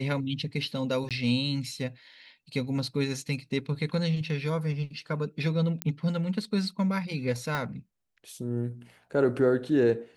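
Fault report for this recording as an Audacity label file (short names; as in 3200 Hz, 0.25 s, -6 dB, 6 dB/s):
1.090000	1.110000	gap 17 ms
5.820000	5.820000	pop -12 dBFS
7.550000	7.550000	pop -16 dBFS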